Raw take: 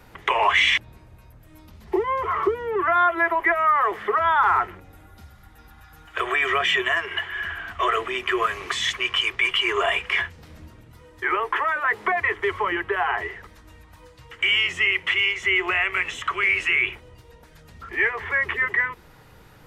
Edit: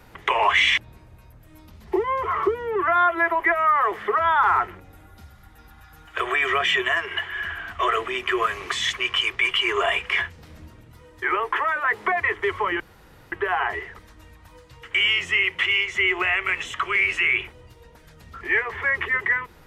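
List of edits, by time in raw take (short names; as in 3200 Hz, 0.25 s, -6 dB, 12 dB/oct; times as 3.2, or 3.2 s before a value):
12.8 insert room tone 0.52 s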